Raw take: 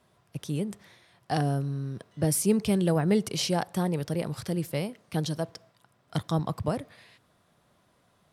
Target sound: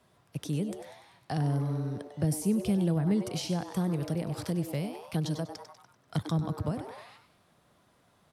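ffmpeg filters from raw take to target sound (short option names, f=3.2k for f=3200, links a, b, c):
-filter_complex "[0:a]asplit=6[a][b][c][d][e][f];[b]adelay=97,afreqshift=150,volume=-11dB[g];[c]adelay=194,afreqshift=300,volume=-17.6dB[h];[d]adelay=291,afreqshift=450,volume=-24.1dB[i];[e]adelay=388,afreqshift=600,volume=-30.7dB[j];[f]adelay=485,afreqshift=750,volume=-37.2dB[k];[a][g][h][i][j][k]amix=inputs=6:normalize=0,acrossover=split=250[l][m];[m]acompressor=threshold=-35dB:ratio=5[n];[l][n]amix=inputs=2:normalize=0"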